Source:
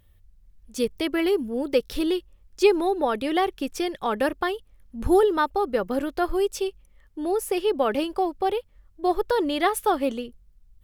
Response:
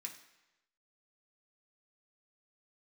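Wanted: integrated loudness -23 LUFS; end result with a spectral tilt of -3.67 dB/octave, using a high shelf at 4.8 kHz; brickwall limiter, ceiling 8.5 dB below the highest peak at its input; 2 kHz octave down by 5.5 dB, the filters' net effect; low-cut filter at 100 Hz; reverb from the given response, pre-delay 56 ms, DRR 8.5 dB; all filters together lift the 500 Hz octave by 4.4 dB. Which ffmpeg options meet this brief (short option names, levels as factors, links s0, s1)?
-filter_complex "[0:a]highpass=100,equalizer=f=500:t=o:g=6,equalizer=f=2000:t=o:g=-9,highshelf=f=4800:g=6.5,alimiter=limit=0.224:level=0:latency=1,asplit=2[s0][s1];[1:a]atrim=start_sample=2205,adelay=56[s2];[s1][s2]afir=irnorm=-1:irlink=0,volume=0.562[s3];[s0][s3]amix=inputs=2:normalize=0,volume=1.06"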